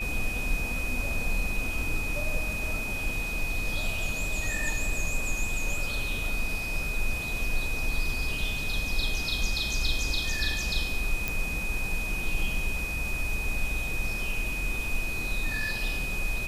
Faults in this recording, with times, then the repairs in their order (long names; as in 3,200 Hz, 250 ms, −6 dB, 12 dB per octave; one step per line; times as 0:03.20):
whistle 2,500 Hz −32 dBFS
0:11.28: click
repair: click removal
notch filter 2,500 Hz, Q 30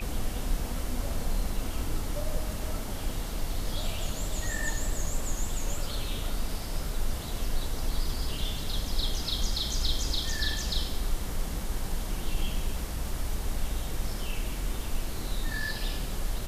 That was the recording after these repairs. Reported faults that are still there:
none of them is left